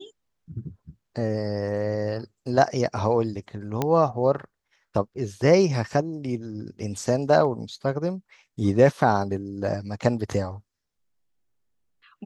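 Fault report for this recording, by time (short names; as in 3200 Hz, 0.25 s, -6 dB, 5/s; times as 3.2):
3.82 pop -10 dBFS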